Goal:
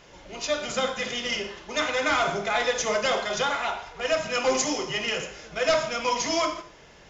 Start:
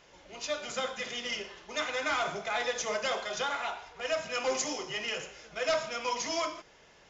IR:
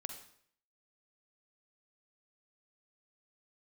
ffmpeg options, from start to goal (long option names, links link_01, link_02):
-filter_complex "[0:a]asplit=2[link_01][link_02];[1:a]atrim=start_sample=2205,asetrate=61740,aresample=44100,lowshelf=frequency=330:gain=9.5[link_03];[link_02][link_03]afir=irnorm=-1:irlink=0,volume=6.5dB[link_04];[link_01][link_04]amix=inputs=2:normalize=0"